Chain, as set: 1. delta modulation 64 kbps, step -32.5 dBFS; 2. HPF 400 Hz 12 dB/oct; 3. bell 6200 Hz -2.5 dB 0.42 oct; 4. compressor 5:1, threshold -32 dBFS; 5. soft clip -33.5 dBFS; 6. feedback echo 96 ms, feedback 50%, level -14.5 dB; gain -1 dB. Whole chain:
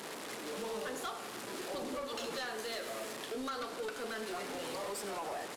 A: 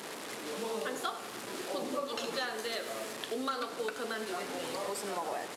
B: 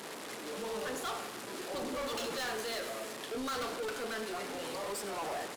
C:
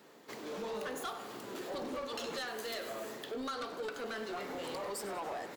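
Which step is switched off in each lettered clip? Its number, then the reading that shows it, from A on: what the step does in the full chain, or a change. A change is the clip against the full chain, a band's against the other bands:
5, distortion -12 dB; 4, mean gain reduction 3.5 dB; 1, 8 kHz band -3.5 dB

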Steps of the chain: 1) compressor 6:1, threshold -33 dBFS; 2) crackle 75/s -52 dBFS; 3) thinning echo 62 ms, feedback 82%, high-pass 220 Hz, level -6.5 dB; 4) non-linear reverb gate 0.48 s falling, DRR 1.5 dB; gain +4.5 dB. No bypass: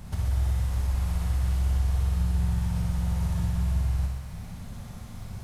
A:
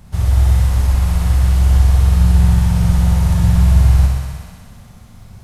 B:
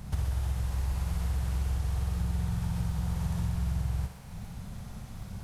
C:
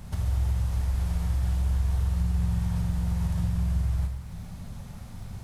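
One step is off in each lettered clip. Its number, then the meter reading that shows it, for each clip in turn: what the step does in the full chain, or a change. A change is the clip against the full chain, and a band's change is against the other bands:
1, mean gain reduction 10.5 dB; 4, echo-to-direct 2.5 dB to -2.0 dB; 3, echo-to-direct 2.5 dB to -1.5 dB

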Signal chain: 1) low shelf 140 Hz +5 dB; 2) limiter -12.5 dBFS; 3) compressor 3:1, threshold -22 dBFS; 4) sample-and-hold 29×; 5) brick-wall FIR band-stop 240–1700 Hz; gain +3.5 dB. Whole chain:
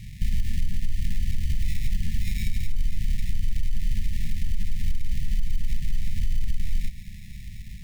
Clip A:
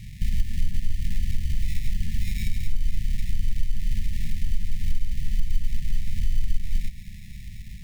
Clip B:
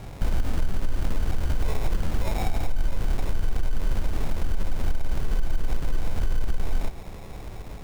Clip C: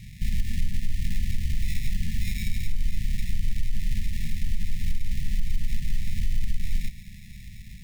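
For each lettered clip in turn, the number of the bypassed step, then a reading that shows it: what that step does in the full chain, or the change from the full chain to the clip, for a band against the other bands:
2, mean gain reduction 2.0 dB; 5, 2 kHz band +3.0 dB; 1, 125 Hz band -2.0 dB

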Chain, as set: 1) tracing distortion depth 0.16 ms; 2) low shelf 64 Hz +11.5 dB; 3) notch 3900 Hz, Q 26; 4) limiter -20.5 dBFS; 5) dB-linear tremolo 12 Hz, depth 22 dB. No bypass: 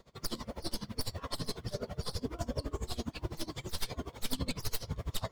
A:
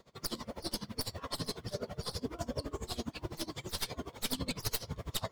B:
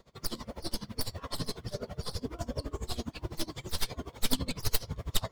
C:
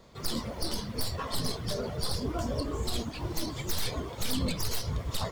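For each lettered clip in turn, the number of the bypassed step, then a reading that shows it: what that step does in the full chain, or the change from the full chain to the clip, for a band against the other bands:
2, 125 Hz band -3.5 dB; 4, crest factor change +5.5 dB; 5, crest factor change -5.5 dB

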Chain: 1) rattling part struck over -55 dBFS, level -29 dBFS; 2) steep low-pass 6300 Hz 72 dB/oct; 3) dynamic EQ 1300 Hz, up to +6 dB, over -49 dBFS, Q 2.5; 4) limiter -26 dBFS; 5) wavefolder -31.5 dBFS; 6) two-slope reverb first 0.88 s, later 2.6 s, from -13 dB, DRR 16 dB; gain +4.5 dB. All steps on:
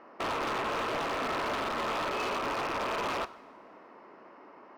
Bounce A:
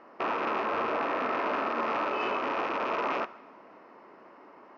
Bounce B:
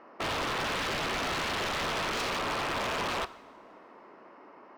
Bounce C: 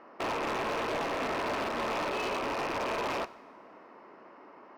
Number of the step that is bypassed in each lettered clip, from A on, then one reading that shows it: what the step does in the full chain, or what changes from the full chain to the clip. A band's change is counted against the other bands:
5, distortion -7 dB; 4, mean gain reduction 2.5 dB; 3, 250 Hz band +1.5 dB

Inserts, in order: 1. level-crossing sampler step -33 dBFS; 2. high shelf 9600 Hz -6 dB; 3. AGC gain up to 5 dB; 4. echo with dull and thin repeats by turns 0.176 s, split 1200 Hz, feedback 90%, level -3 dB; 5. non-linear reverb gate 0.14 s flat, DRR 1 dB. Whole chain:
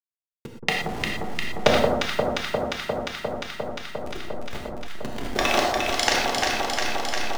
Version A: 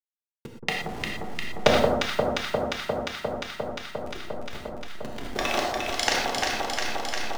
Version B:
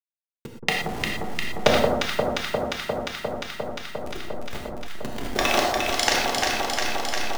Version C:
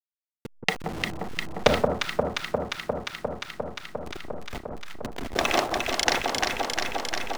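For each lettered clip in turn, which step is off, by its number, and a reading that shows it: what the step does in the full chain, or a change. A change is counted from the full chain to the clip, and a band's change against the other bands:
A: 3, crest factor change +1.5 dB; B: 2, 8 kHz band +1.5 dB; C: 5, echo-to-direct 5.0 dB to 1.0 dB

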